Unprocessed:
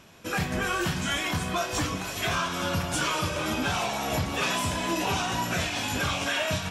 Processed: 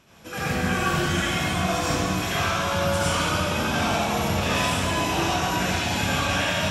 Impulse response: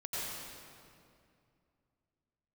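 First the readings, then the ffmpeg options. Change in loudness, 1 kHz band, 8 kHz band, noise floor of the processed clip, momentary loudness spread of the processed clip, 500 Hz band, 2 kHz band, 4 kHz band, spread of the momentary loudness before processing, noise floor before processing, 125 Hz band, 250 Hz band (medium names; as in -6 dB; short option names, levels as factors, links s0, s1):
+4.0 dB, +4.5 dB, +2.5 dB, -32 dBFS, 2 LU, +5.0 dB, +3.5 dB, +3.5 dB, 2 LU, -35 dBFS, +5.0 dB, +5.0 dB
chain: -filter_complex "[1:a]atrim=start_sample=2205,asetrate=52920,aresample=44100[s0];[0:a][s0]afir=irnorm=-1:irlink=0,volume=1.26"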